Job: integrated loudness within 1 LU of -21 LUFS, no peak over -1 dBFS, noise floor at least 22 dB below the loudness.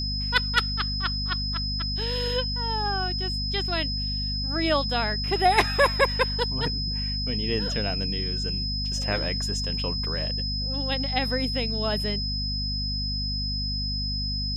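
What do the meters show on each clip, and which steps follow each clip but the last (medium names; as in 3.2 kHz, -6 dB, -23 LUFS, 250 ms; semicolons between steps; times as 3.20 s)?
hum 50 Hz; highest harmonic 250 Hz; hum level -28 dBFS; steady tone 5.1 kHz; tone level -29 dBFS; loudness -25.5 LUFS; peak level -6.5 dBFS; loudness target -21.0 LUFS
-> de-hum 50 Hz, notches 5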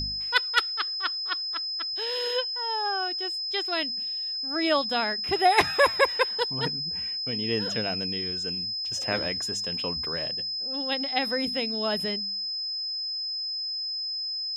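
hum not found; steady tone 5.1 kHz; tone level -29 dBFS
-> band-stop 5.1 kHz, Q 30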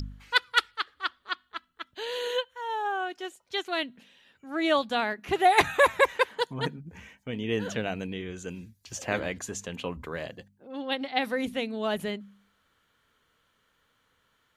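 steady tone not found; loudness -29.0 LUFS; peak level -7.5 dBFS; loudness target -21.0 LUFS
-> trim +8 dB; peak limiter -1 dBFS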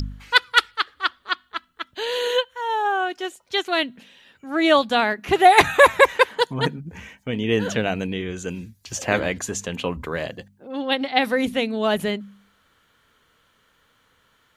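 loudness -21.0 LUFS; peak level -1.0 dBFS; noise floor -63 dBFS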